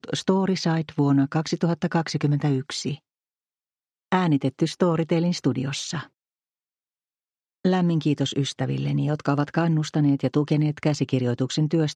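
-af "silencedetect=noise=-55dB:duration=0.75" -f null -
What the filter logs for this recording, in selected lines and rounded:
silence_start: 2.99
silence_end: 4.12 | silence_duration: 1.13
silence_start: 6.09
silence_end: 7.65 | silence_duration: 1.56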